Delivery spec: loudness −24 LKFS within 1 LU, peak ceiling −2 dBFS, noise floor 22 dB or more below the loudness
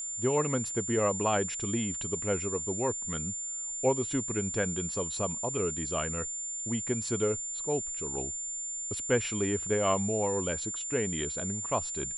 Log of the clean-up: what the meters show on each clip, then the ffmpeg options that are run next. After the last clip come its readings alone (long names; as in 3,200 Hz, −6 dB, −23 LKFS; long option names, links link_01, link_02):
interfering tone 7,200 Hz; level of the tone −34 dBFS; integrated loudness −30.5 LKFS; sample peak −14.0 dBFS; target loudness −24.0 LKFS
→ -af "bandreject=frequency=7200:width=30"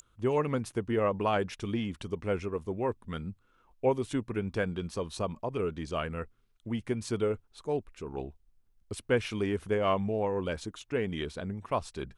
interfering tone none found; integrated loudness −32.5 LKFS; sample peak −15.0 dBFS; target loudness −24.0 LKFS
→ -af "volume=8.5dB"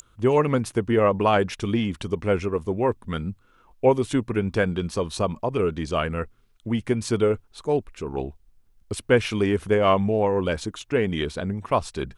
integrated loudness −24.0 LKFS; sample peak −6.5 dBFS; background noise floor −60 dBFS